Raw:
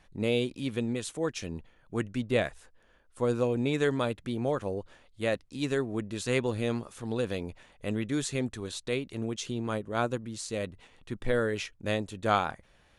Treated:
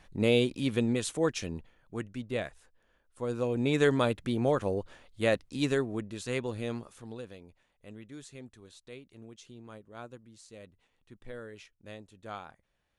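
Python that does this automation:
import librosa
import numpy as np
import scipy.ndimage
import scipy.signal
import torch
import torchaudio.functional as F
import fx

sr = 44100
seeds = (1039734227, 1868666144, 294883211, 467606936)

y = fx.gain(x, sr, db=fx.line((1.26, 3.0), (2.08, -6.5), (3.24, -6.5), (3.79, 2.5), (5.62, 2.5), (6.19, -5.0), (6.88, -5.0), (7.38, -16.0)))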